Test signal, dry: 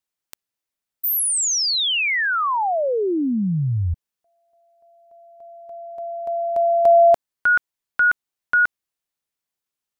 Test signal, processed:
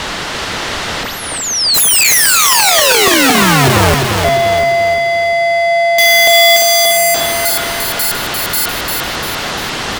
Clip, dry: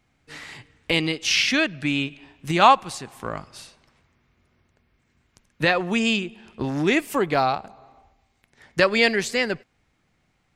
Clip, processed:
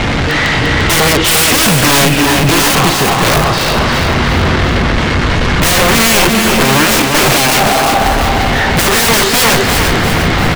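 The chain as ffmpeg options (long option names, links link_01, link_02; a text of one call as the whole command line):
ffmpeg -i in.wav -af "aeval=exprs='val(0)+0.5*0.141*sgn(val(0))':channel_layout=same,lowpass=3300,equalizer=frequency=2400:width=4.8:gain=-4,bandreject=frequency=129.7:width_type=h:width=4,bandreject=frequency=259.4:width_type=h:width=4,bandreject=frequency=389.1:width_type=h:width=4,bandreject=frequency=518.8:width_type=h:width=4,bandreject=frequency=648.5:width_type=h:width=4,bandreject=frequency=778.2:width_type=h:width=4,bandreject=frequency=907.9:width_type=h:width=4,bandreject=frequency=1037.6:width_type=h:width=4,bandreject=frequency=1167.3:width_type=h:width=4,bandreject=frequency=1297:width_type=h:width=4,bandreject=frequency=1426.7:width_type=h:width=4,bandreject=frequency=1556.4:width_type=h:width=4,bandreject=frequency=1686.1:width_type=h:width=4,bandreject=frequency=1815.8:width_type=h:width=4,bandreject=frequency=1945.5:width_type=h:width=4,bandreject=frequency=2075.2:width_type=h:width=4,bandreject=frequency=2204.9:width_type=h:width=4,bandreject=frequency=2334.6:width_type=h:width=4,bandreject=frequency=2464.3:width_type=h:width=4,bandreject=frequency=2594:width_type=h:width=4,acontrast=89,aeval=exprs='(mod(3.76*val(0)+1,2)-1)/3.76':channel_layout=same,aecho=1:1:347|694|1041|1388|1735|2082:0.562|0.264|0.124|0.0584|0.0274|0.0129,volume=4.5dB" out.wav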